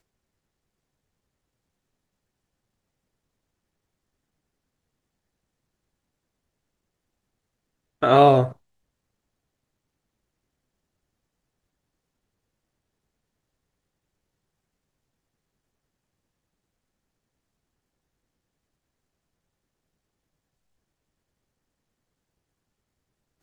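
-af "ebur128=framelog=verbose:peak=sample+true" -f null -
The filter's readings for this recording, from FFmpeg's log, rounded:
Integrated loudness:
  I:         -17.6 LUFS
  Threshold: -28.6 LUFS
Loudness range:
  LRA:         6.9 LU
  Threshold: -44.5 LUFS
  LRA low:   -30.7 LUFS
  LRA high:  -23.9 LUFS
Sample peak:
  Peak:       -2.5 dBFS
True peak:
  Peak:       -2.5 dBFS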